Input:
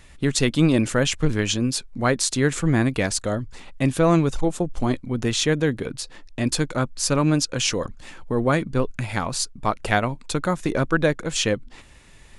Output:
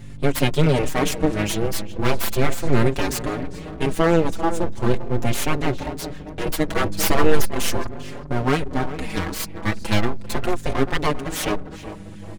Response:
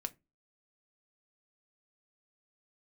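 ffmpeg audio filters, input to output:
-filter_complex "[0:a]equalizer=frequency=89:width=0.53:gain=7,aeval=exprs='val(0)+0.0224*(sin(2*PI*50*n/s)+sin(2*PI*2*50*n/s)/2+sin(2*PI*3*50*n/s)/3+sin(2*PI*4*50*n/s)/4+sin(2*PI*5*50*n/s)/5)':channel_layout=same,asplit=2[link_01][link_02];[link_02]adelay=396,lowpass=frequency=1300:poles=1,volume=-12dB,asplit=2[link_03][link_04];[link_04]adelay=396,lowpass=frequency=1300:poles=1,volume=0.46,asplit=2[link_05][link_06];[link_06]adelay=396,lowpass=frequency=1300:poles=1,volume=0.46,asplit=2[link_07][link_08];[link_08]adelay=396,lowpass=frequency=1300:poles=1,volume=0.46,asplit=2[link_09][link_10];[link_10]adelay=396,lowpass=frequency=1300:poles=1,volume=0.46[link_11];[link_03][link_05][link_07][link_09][link_11]amix=inputs=5:normalize=0[link_12];[link_01][link_12]amix=inputs=2:normalize=0,asettb=1/sr,asplit=3[link_13][link_14][link_15];[link_13]atrim=end=6.684[link_16];[link_14]atrim=start=6.68:end=7.42,asetpts=PTS-STARTPTS,afade=type=in:duration=0.004:curve=qsin,afade=type=out:start_time=0.736:duration=0.004:curve=qsin,acontrast=58[link_17];[link_15]atrim=start=7.416[link_18];[link_16][link_17]acrossfade=duration=0.004:curve1=hsin:curve2=qsin[link_19];[link_19][link_18]acrossfade=duration=0.004:curve1=qsin:curve2=hsin,highpass=45,aeval=exprs='abs(val(0))':channel_layout=same,asplit=2[link_20][link_21];[link_21]adelay=5.3,afreqshift=0.38[link_22];[link_20][link_22]amix=inputs=2:normalize=1,volume=3.5dB"

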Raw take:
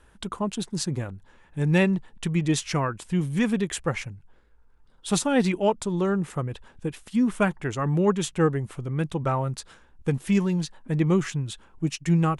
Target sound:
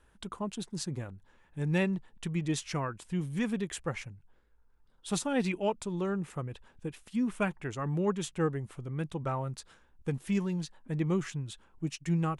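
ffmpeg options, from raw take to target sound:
ffmpeg -i in.wav -filter_complex "[0:a]asettb=1/sr,asplit=3[link_01][link_02][link_03];[link_01]atrim=end=5.334[link_04];[link_02]atrim=start=5.33:end=7.66,asetpts=PTS-STARTPTS,afade=type=in:duration=0.004:curve=qsin,afade=type=out:start_time=2.326:duration=0.004:curve=qsin,adynamicequalizer=threshold=0.00355:dfrequency=2500:dqfactor=4.9:tfrequency=2500:tqfactor=4.9:attack=5:release=100:ratio=0.375:range=3:mode=boostabove:tftype=bell[link_05];[link_03]atrim=start=7.656[link_06];[link_04][link_05]acrossfade=duration=0.004:curve1=hsin:curve2=qsin[link_07];[link_07][link_06]acrossfade=duration=0.004:curve1=qsin:curve2=hsin,volume=-8dB" out.wav

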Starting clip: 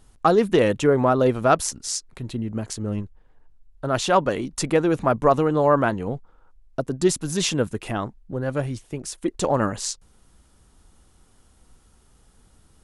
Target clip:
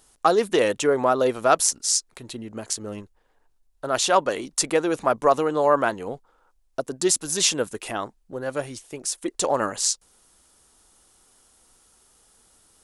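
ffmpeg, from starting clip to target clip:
ffmpeg -i in.wav -af "bass=frequency=250:gain=-14,treble=frequency=4000:gain=7" out.wav

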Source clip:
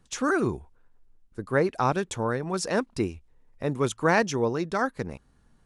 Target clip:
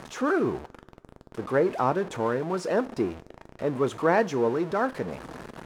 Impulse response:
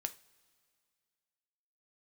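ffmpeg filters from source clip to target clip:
-filter_complex "[0:a]aeval=exprs='val(0)+0.5*0.0376*sgn(val(0))':channel_layout=same,bandpass=frequency=550:width_type=q:width=0.58:csg=0,asplit=2[link_01][link_02];[1:a]atrim=start_sample=2205,highshelf=frequency=5700:gain=10.5[link_03];[link_02][link_03]afir=irnorm=-1:irlink=0,volume=1dB[link_04];[link_01][link_04]amix=inputs=2:normalize=0,volume=-5.5dB"

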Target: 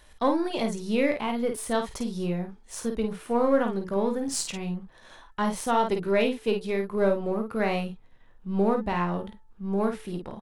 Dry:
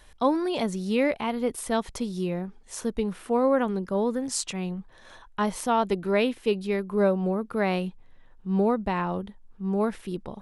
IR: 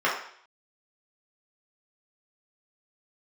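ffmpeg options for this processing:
-filter_complex "[0:a]aeval=exprs='if(lt(val(0),0),0.708*val(0),val(0))':channel_layout=same,bandreject=frequency=437.6:width_type=h:width=4,bandreject=frequency=875.2:width_type=h:width=4,bandreject=frequency=1312.8:width_type=h:width=4,bandreject=frequency=1750.4:width_type=h:width=4,asplit=2[link_01][link_02];[link_02]aecho=0:1:18|51:0.299|0.501[link_03];[link_01][link_03]amix=inputs=2:normalize=0"

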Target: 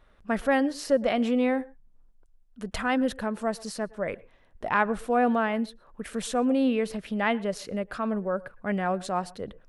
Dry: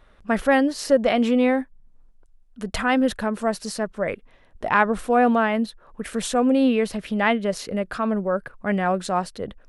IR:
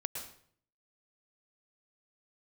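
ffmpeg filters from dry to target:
-filter_complex "[0:a]asplit=2[link_01][link_02];[1:a]atrim=start_sample=2205,atrim=end_sample=6174,highshelf=frequency=3100:gain=-11.5[link_03];[link_02][link_03]afir=irnorm=-1:irlink=0,volume=-14.5dB[link_04];[link_01][link_04]amix=inputs=2:normalize=0,volume=-6.5dB"

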